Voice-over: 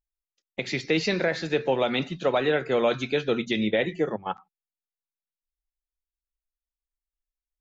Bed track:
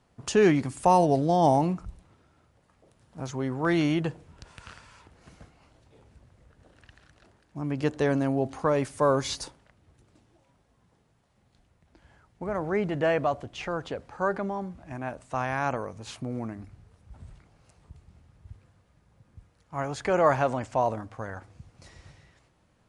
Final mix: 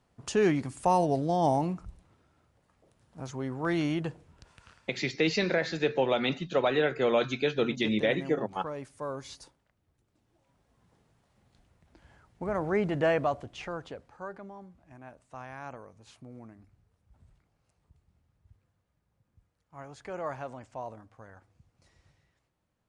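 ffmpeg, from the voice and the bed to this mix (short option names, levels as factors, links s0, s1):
-filter_complex "[0:a]adelay=4300,volume=0.75[s0];[1:a]volume=2.66,afade=t=out:st=4.12:d=0.76:silence=0.354813,afade=t=in:st=10.13:d=0.82:silence=0.223872,afade=t=out:st=13:d=1.28:silence=0.211349[s1];[s0][s1]amix=inputs=2:normalize=0"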